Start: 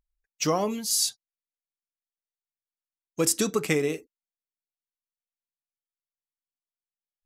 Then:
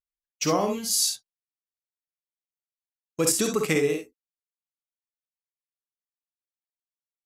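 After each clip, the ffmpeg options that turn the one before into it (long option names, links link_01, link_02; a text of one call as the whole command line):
ffmpeg -i in.wav -filter_complex "[0:a]agate=range=-23dB:threshold=-45dB:ratio=16:detection=peak,asplit=2[link_01][link_02];[link_02]aecho=0:1:50|66:0.473|0.422[link_03];[link_01][link_03]amix=inputs=2:normalize=0" out.wav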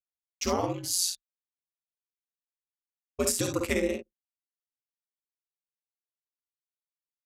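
ffmpeg -i in.wav -af "aeval=exprs='val(0)*sin(2*PI*90*n/s)':channel_layout=same,anlmdn=0.631,volume=-1.5dB" out.wav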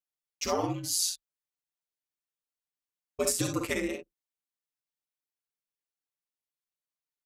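ffmpeg -i in.wav -af "aecho=1:1:6.7:0.77,volume=-3dB" out.wav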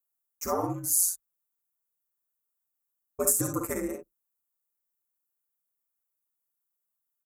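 ffmpeg -i in.wav -af "firequalizer=gain_entry='entry(680,0);entry(1300,3);entry(3100,-25);entry(6900,3);entry(14000,14)':delay=0.05:min_phase=1" out.wav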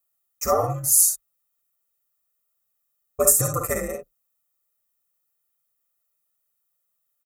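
ffmpeg -i in.wav -af "aecho=1:1:1.6:0.84,volume=5.5dB" out.wav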